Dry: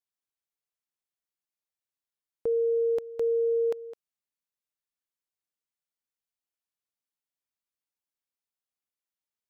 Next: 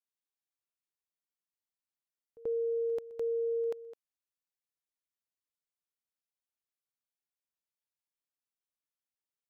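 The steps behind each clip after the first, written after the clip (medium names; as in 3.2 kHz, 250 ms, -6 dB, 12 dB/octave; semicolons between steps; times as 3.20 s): pre-echo 85 ms -21 dB; trim -6.5 dB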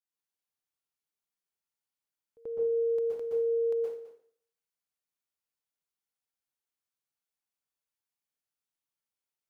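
plate-style reverb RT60 0.56 s, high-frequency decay 0.95×, pre-delay 110 ms, DRR -5 dB; trim -5 dB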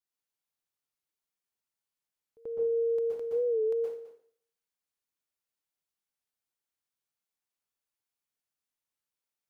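warped record 45 rpm, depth 100 cents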